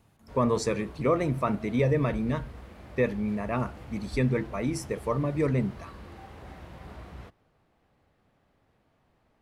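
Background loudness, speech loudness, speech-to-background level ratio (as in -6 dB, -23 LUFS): -46.0 LUFS, -28.5 LUFS, 17.5 dB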